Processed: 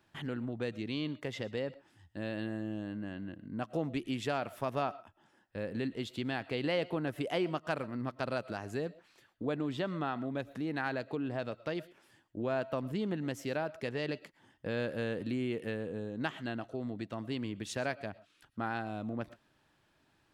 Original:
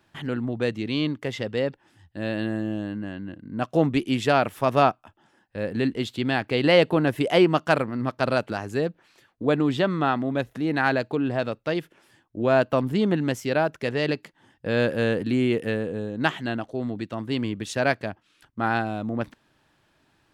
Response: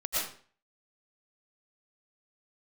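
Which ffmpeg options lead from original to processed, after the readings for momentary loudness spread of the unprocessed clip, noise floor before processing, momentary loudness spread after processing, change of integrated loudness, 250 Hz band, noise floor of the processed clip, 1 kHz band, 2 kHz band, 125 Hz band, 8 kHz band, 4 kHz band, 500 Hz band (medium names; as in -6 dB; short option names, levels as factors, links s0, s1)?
11 LU, -66 dBFS, 7 LU, -12.0 dB, -11.5 dB, -72 dBFS, -13.0 dB, -12.5 dB, -11.5 dB, no reading, -12.0 dB, -12.5 dB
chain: -filter_complex "[0:a]acompressor=threshold=0.0316:ratio=2,asplit=2[s0][s1];[1:a]atrim=start_sample=2205,atrim=end_sample=6174[s2];[s1][s2]afir=irnorm=-1:irlink=0,volume=0.0668[s3];[s0][s3]amix=inputs=2:normalize=0,volume=0.473"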